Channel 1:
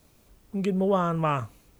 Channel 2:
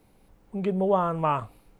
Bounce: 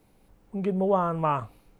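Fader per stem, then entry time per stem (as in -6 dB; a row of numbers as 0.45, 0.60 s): -17.0, -1.5 dB; 0.00, 0.00 s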